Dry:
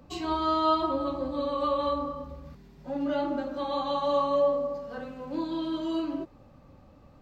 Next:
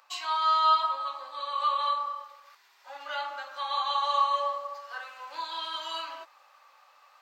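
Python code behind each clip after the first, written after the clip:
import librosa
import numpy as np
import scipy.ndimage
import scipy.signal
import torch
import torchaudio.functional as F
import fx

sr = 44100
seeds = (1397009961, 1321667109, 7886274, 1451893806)

y = scipy.signal.sosfilt(scipy.signal.butter(4, 1000.0, 'highpass', fs=sr, output='sos'), x)
y = fx.rider(y, sr, range_db=4, speed_s=2.0)
y = y * 10.0 ** (5.0 / 20.0)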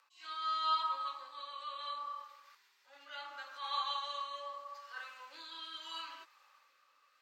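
y = fx.peak_eq(x, sr, hz=680.0, db=-12.0, octaves=0.65)
y = fx.rotary(y, sr, hz=0.75)
y = fx.attack_slew(y, sr, db_per_s=150.0)
y = y * 10.0 ** (-3.5 / 20.0)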